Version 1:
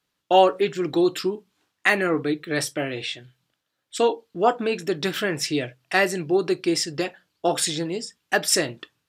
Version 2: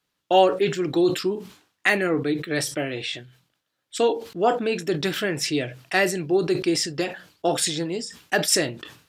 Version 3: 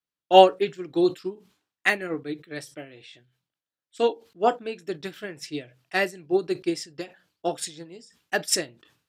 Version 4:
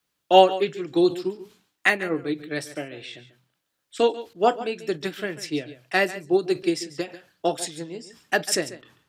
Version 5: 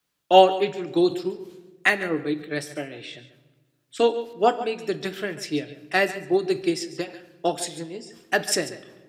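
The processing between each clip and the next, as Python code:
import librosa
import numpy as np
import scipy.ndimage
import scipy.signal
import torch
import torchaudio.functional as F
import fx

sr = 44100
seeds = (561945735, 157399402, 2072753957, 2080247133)

y1 = fx.dynamic_eq(x, sr, hz=1100.0, q=1.9, threshold_db=-36.0, ratio=4.0, max_db=-5)
y1 = fx.sustainer(y1, sr, db_per_s=120.0)
y2 = fx.upward_expand(y1, sr, threshold_db=-28.0, expansion=2.5)
y2 = F.gain(torch.from_numpy(y2), 5.0).numpy()
y3 = y2 + 10.0 ** (-16.0 / 20.0) * np.pad(y2, (int(140 * sr / 1000.0), 0))[:len(y2)]
y3 = fx.band_squash(y3, sr, depth_pct=40)
y3 = F.gain(torch.from_numpy(y3), 3.0).numpy()
y4 = fx.room_shoebox(y3, sr, seeds[0], volume_m3=1200.0, walls='mixed', distance_m=0.35)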